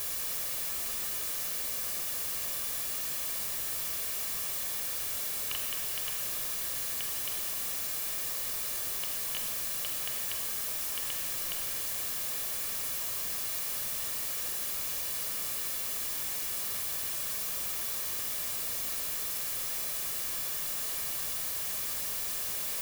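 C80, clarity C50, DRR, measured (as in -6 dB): 6.0 dB, 4.5 dB, 3.5 dB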